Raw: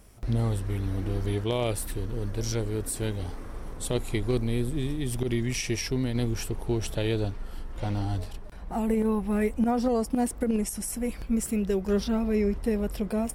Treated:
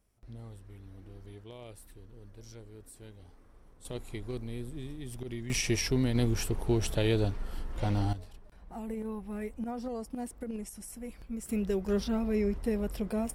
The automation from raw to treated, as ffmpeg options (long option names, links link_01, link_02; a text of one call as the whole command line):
ffmpeg -i in.wav -af "asetnsamples=nb_out_samples=441:pad=0,asendcmd='3.85 volume volume -11.5dB;5.5 volume volume 0dB;8.13 volume volume -12dB;11.49 volume volume -4dB',volume=-20dB" out.wav